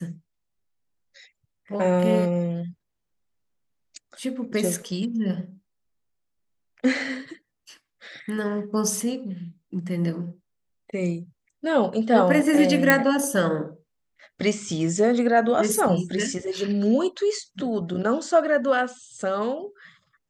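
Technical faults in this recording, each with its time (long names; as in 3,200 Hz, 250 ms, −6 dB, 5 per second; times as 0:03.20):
0:12.90: click −2 dBFS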